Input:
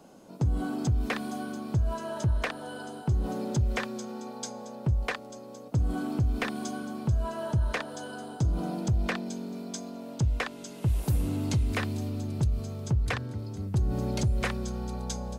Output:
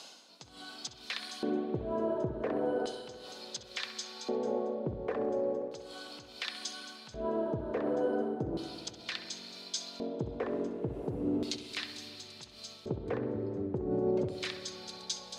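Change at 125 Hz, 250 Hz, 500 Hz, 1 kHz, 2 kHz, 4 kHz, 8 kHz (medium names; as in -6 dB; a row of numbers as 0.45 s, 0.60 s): -15.5 dB, -3.5 dB, +4.0 dB, -4.5 dB, -7.5 dB, +2.5 dB, -2.5 dB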